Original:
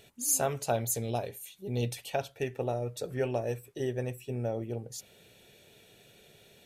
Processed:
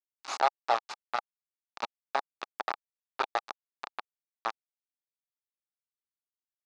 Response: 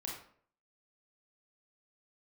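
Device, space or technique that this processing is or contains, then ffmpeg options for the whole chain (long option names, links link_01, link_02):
hand-held game console: -filter_complex "[0:a]asettb=1/sr,asplit=3[link_01][link_02][link_03];[link_01]atrim=end=1.864[link_04];[link_02]atrim=start=1.86:end=2.3,asetpts=PTS-STARTPTS,afade=type=in:duration=0.004:curve=qsin,afade=type=out:start_time=0.436:duration=0.004:curve=qsin,asubboost=boost=11:cutoff=140[link_05];[link_03]atrim=start=2.296[link_06];[link_04][link_05]acrossfade=duration=0.004:curve1=hsin:curve2=qsin[link_07];[link_07][link_06]acrossfade=duration=0.004:curve1=qsin:curve2=hsin,asplit=2[link_08][link_09];[link_09]adelay=66,lowpass=frequency=1700:poles=1,volume=-18.5dB,asplit=2[link_10][link_11];[link_11]adelay=66,lowpass=frequency=1700:poles=1,volume=0.17[link_12];[link_08][link_10][link_12]amix=inputs=3:normalize=0,acrusher=bits=3:mix=0:aa=0.000001,highpass=490,equalizer=frequency=500:width_type=q:width=4:gain=-5,equalizer=frequency=830:width_type=q:width=4:gain=8,equalizer=frequency=1200:width_type=q:width=4:gain=7,equalizer=frequency=2000:width_type=q:width=4:gain=-4,equalizer=frequency=3100:width_type=q:width=4:gain=-8,lowpass=frequency=4500:width=0.5412,lowpass=frequency=4500:width=1.3066"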